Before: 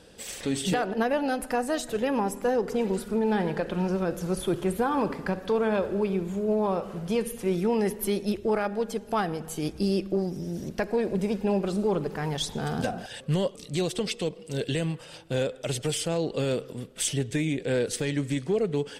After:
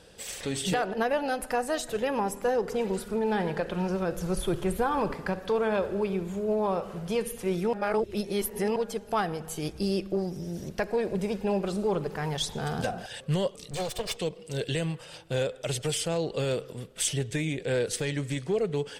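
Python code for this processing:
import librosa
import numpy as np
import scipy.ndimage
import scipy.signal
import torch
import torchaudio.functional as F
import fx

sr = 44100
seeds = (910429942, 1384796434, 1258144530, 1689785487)

y = fx.low_shelf(x, sr, hz=62.0, db=12.0, at=(4.16, 5.15))
y = fx.lower_of_two(y, sr, delay_ms=1.7, at=(13.71, 14.17))
y = fx.edit(y, sr, fx.reverse_span(start_s=7.73, length_s=1.03), tone=tone)
y = fx.peak_eq(y, sr, hz=260.0, db=-6.5, octaves=0.76)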